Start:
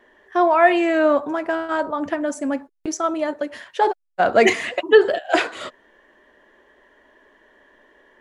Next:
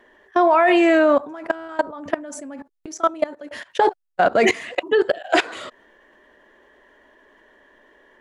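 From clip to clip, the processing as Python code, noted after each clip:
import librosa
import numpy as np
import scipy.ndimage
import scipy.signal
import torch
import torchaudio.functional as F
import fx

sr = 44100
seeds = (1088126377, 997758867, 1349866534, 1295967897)

y = fx.level_steps(x, sr, step_db=20)
y = y * 10.0 ** (5.5 / 20.0)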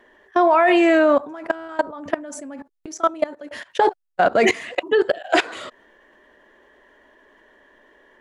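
y = x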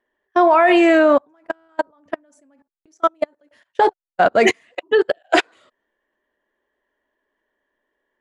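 y = fx.upward_expand(x, sr, threshold_db=-30.0, expansion=2.5)
y = y * 10.0 ** (3.5 / 20.0)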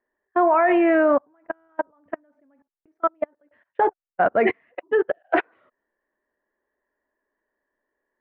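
y = scipy.signal.sosfilt(scipy.signal.butter(4, 2100.0, 'lowpass', fs=sr, output='sos'), x)
y = y * 10.0 ** (-4.5 / 20.0)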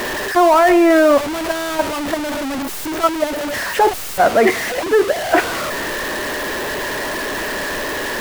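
y = x + 0.5 * 10.0 ** (-20.5 / 20.0) * np.sign(x)
y = y * 10.0 ** (4.0 / 20.0)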